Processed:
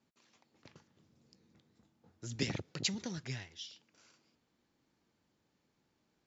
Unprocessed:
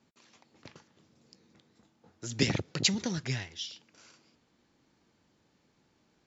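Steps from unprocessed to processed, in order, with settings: 0.7–2.36 low shelf 200 Hz +8.5 dB; gain -8 dB

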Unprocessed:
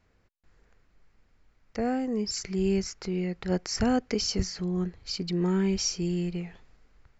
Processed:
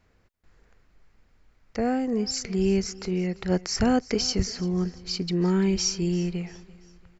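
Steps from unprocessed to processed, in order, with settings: feedback echo 0.341 s, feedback 42%, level -20.5 dB; gain +3 dB

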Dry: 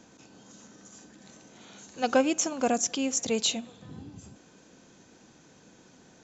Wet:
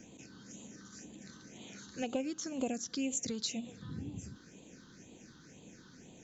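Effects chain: dynamic EQ 1200 Hz, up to -3 dB, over -42 dBFS, Q 0.84; compressor 6:1, threshold -33 dBFS, peak gain reduction 13 dB; phaser stages 6, 2 Hz, lowest notch 630–1500 Hz; gain +2 dB

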